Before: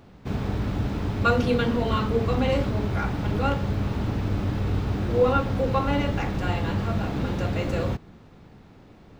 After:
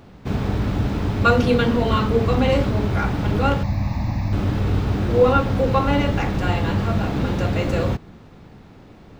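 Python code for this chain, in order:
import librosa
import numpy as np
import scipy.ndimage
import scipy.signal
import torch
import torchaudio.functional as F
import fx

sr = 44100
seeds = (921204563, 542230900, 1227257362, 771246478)

y = fx.fixed_phaser(x, sr, hz=2100.0, stages=8, at=(3.63, 4.33))
y = y * librosa.db_to_amplitude(5.0)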